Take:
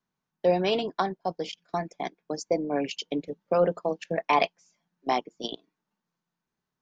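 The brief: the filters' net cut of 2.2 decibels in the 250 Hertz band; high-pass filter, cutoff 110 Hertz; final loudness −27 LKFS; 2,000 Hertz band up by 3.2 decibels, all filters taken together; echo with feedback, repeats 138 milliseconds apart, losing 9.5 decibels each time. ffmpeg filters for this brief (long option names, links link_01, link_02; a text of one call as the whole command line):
ffmpeg -i in.wav -af "highpass=110,equalizer=frequency=250:width_type=o:gain=-3,equalizer=frequency=2000:width_type=o:gain=4,aecho=1:1:138|276|414|552:0.335|0.111|0.0365|0.012,volume=1.5dB" out.wav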